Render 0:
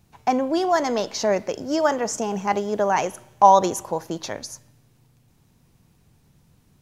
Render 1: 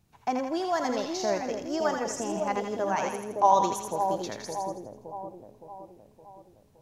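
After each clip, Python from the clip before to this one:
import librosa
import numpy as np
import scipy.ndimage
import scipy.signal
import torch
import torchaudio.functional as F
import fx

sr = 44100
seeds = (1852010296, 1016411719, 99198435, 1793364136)

y = fx.echo_split(x, sr, split_hz=840.0, low_ms=566, high_ms=82, feedback_pct=52, wet_db=-4)
y = y * 10.0 ** (-8.0 / 20.0)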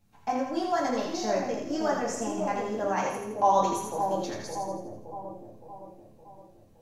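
y = fx.room_shoebox(x, sr, seeds[0], volume_m3=190.0, walls='furnished', distance_m=2.2)
y = y * 10.0 ** (-4.5 / 20.0)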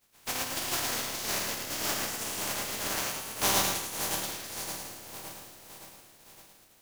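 y = fx.spec_flatten(x, sr, power=0.18)
y = y + 10.0 ** (-5.0 / 20.0) * np.pad(y, (int(110 * sr / 1000.0), 0))[:len(y)]
y = y * 10.0 ** (-5.0 / 20.0)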